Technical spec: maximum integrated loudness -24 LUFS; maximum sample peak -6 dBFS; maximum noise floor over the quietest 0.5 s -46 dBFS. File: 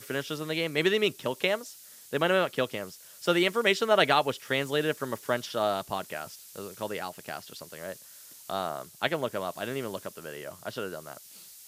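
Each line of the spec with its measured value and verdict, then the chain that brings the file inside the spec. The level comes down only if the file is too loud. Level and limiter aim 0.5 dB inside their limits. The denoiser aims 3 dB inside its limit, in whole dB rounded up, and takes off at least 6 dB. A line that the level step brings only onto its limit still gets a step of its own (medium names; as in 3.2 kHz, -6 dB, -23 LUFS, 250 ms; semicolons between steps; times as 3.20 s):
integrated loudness -29.0 LUFS: pass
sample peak -7.5 dBFS: pass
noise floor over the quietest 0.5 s -50 dBFS: pass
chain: none needed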